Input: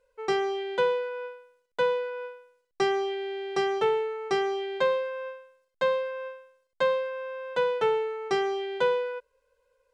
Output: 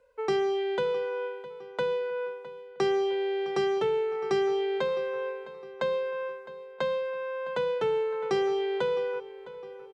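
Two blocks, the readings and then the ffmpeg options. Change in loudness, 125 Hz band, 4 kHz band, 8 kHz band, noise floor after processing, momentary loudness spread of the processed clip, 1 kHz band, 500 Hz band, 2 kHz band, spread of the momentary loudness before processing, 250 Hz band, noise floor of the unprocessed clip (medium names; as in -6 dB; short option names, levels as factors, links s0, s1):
-1.0 dB, +4.0 dB, -2.0 dB, no reading, -46 dBFS, 14 LU, -4.0 dB, 0.0 dB, -4.0 dB, 12 LU, +2.0 dB, -77 dBFS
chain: -filter_complex "[0:a]highpass=45,highshelf=f=3100:g=-9,asplit=2[s0][s1];[s1]alimiter=limit=0.0794:level=0:latency=1,volume=1.06[s2];[s0][s2]amix=inputs=2:normalize=0,acrossover=split=360|3000[s3][s4][s5];[s4]acompressor=threshold=0.0251:ratio=6[s6];[s3][s6][s5]amix=inputs=3:normalize=0,asplit=2[s7][s8];[s8]adelay=660,lowpass=f=4500:p=1,volume=0.158,asplit=2[s9][s10];[s10]adelay=660,lowpass=f=4500:p=1,volume=0.5,asplit=2[s11][s12];[s12]adelay=660,lowpass=f=4500:p=1,volume=0.5,asplit=2[s13][s14];[s14]adelay=660,lowpass=f=4500:p=1,volume=0.5[s15];[s7][s9][s11][s13][s15]amix=inputs=5:normalize=0"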